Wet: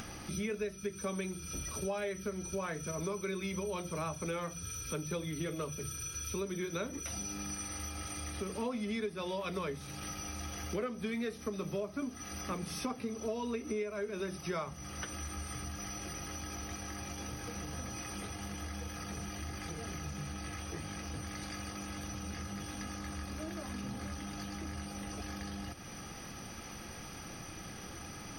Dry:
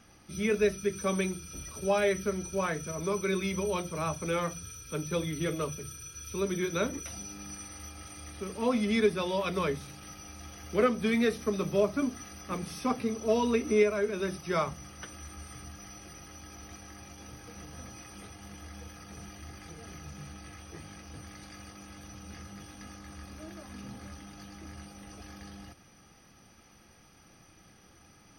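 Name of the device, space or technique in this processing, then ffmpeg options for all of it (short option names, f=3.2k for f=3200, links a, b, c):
upward and downward compression: -af "acompressor=mode=upward:threshold=-38dB:ratio=2.5,acompressor=threshold=-37dB:ratio=6,volume=2.5dB"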